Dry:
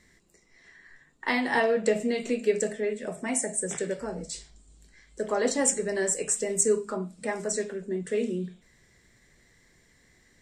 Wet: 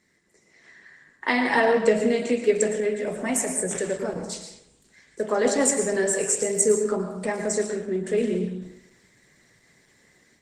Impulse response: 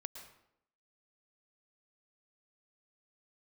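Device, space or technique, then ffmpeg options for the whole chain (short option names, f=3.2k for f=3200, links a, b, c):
far-field microphone of a smart speaker: -filter_complex "[0:a]asettb=1/sr,asplit=3[a][b][c];[a]atrim=end=4.184[d];[b]atrim=start=4.18:end=5.3,asetpts=PTS-STARTPTS,afade=t=in:d=0.004:c=qsin,afade=t=out:st=1.116:d=0.004:c=qsin,lowshelf=f=130:g=-2.5[e];[c]atrim=start=5.296[f];[d][e]acrossfade=d=0.004:c1=hsin:c2=qsin[g];[g][f]acrossfade=d=0.004:c1=qsin:c2=hsin[h];[1:a]atrim=start_sample=2205[i];[h][i]afir=irnorm=-1:irlink=0,highpass=120,dynaudnorm=f=220:g=3:m=8.5dB" -ar 48000 -c:a libopus -b:a 16k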